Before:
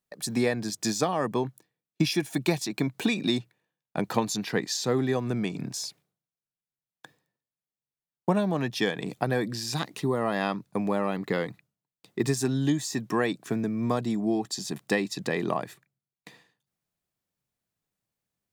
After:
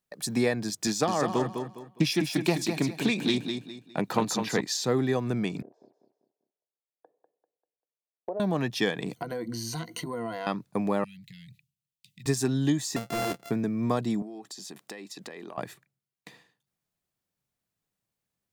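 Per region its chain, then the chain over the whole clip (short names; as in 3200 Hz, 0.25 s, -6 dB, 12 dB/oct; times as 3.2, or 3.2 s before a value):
0.87–4.61 HPF 99 Hz + feedback echo 0.205 s, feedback 31%, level -6.5 dB + Doppler distortion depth 0.17 ms
5.62–8.4 Butterworth band-pass 530 Hz, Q 1.6 + compressor 2.5:1, threshold -30 dBFS + feedback echo 0.196 s, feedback 37%, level -8 dB
9.16–10.47 ripple EQ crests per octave 1.9, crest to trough 17 dB + compressor 5:1, threshold -31 dBFS
11.04–12.26 elliptic band-stop 160–2600 Hz, stop band 50 dB + compressor 3:1, threshold -48 dBFS
12.96–13.51 sample sorter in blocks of 64 samples + hard clip -25.5 dBFS
14.22–15.58 HPF 250 Hz + compressor 8:1, threshold -38 dBFS
whole clip: dry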